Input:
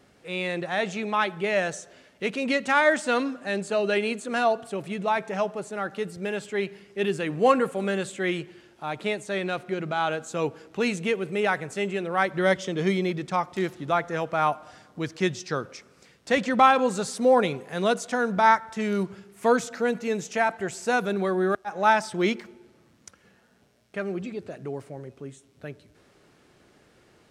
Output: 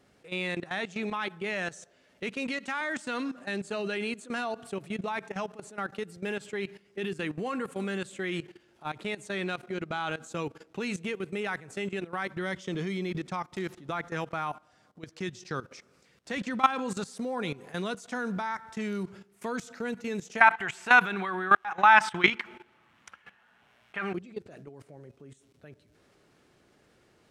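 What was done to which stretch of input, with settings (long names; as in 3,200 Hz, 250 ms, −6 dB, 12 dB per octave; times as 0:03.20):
0:02.34–0:02.81: high-pass filter 240 Hz
0:14.51–0:15.36: duck −8 dB, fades 0.41 s
0:20.41–0:24.14: flat-topped bell 1,600 Hz +14 dB 2.5 octaves
whole clip: dynamic equaliser 590 Hz, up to −8 dB, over −38 dBFS, Q 1.8; output level in coarse steps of 16 dB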